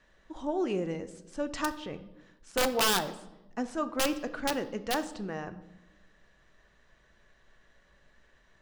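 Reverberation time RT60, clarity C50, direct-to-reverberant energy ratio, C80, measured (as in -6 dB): 1.0 s, 14.5 dB, 10.0 dB, 16.5 dB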